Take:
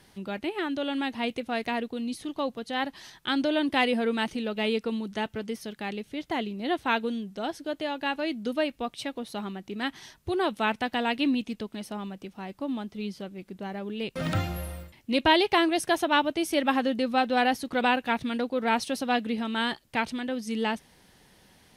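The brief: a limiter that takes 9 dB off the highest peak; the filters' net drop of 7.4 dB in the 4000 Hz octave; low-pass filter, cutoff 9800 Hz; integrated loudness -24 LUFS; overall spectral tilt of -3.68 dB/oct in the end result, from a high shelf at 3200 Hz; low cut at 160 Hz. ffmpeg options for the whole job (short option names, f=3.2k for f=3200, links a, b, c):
-af "highpass=160,lowpass=9.8k,highshelf=f=3.2k:g=-8.5,equalizer=f=4k:t=o:g=-4.5,volume=7.5dB,alimiter=limit=-12dB:level=0:latency=1"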